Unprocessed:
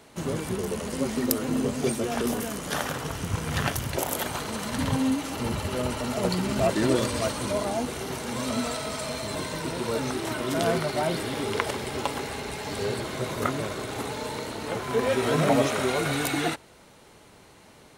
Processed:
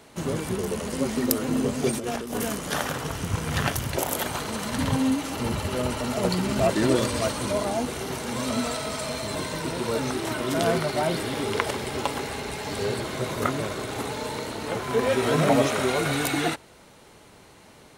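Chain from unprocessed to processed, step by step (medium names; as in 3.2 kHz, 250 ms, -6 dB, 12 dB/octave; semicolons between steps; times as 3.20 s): 1.91–2.55 s: compressor with a negative ratio -30 dBFS, ratio -0.5; trim +1.5 dB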